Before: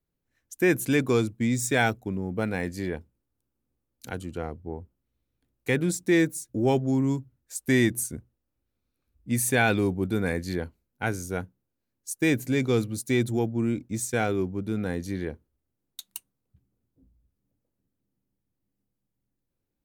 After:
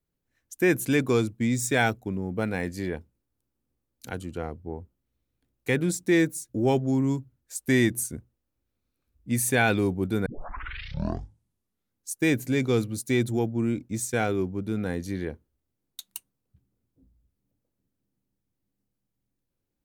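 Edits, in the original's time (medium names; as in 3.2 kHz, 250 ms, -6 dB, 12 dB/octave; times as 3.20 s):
10.26 s: tape start 1.84 s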